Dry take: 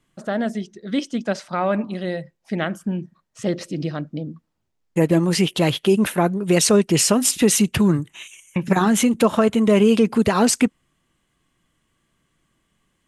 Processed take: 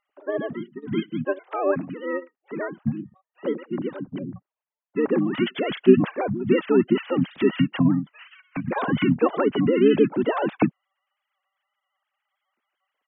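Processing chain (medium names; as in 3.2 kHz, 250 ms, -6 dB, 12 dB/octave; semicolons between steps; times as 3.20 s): formants replaced by sine waves; harmony voices -12 st -9 dB, -7 st -3 dB; trim -5.5 dB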